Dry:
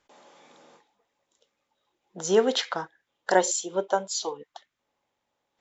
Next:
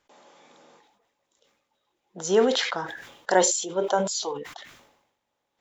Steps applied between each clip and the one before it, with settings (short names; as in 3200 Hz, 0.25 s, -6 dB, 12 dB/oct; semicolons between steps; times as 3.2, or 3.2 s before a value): sustainer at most 63 dB/s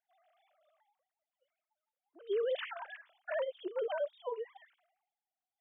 sine-wave speech; limiter -21 dBFS, peak gain reduction 12 dB; upward expander 1.5:1, over -39 dBFS; gain -6 dB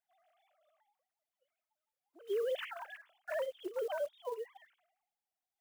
block floating point 5-bit; gain -1.5 dB